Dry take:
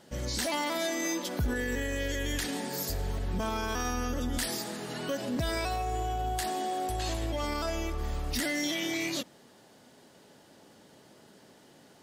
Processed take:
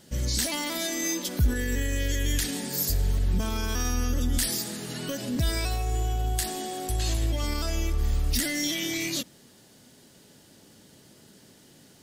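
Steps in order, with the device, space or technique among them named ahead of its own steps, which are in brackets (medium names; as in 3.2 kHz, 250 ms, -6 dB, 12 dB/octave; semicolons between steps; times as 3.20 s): smiley-face EQ (bass shelf 140 Hz +8 dB; peaking EQ 820 Hz -7 dB 1.8 oct; treble shelf 5.1 kHz +7.5 dB); trim +2 dB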